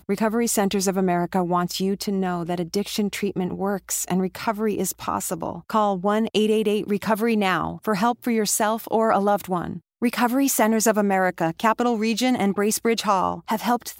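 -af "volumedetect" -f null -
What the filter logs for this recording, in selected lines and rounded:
mean_volume: -22.5 dB
max_volume: -4.9 dB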